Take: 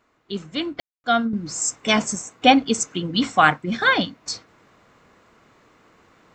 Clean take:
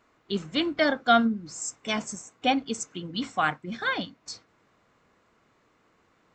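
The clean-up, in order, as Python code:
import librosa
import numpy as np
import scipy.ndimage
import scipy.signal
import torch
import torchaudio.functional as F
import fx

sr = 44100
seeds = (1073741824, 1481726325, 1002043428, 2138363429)

y = fx.fix_ambience(x, sr, seeds[0], print_start_s=5.34, print_end_s=5.84, start_s=0.8, end_s=1.04)
y = fx.fix_level(y, sr, at_s=1.33, step_db=-10.0)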